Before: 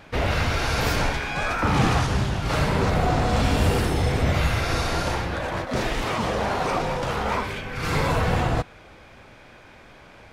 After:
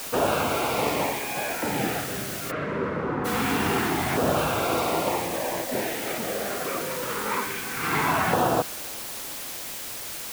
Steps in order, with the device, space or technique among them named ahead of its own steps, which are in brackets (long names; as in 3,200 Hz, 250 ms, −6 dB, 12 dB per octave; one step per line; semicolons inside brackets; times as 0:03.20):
shortwave radio (band-pass filter 260–2,500 Hz; amplitude tremolo 0.23 Hz, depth 55%; auto-filter notch saw down 0.24 Hz 470–2,200 Hz; white noise bed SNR 8 dB)
0:02.50–0:03.24: low-pass filter 2,200 Hz → 1,300 Hz 12 dB per octave
level +5 dB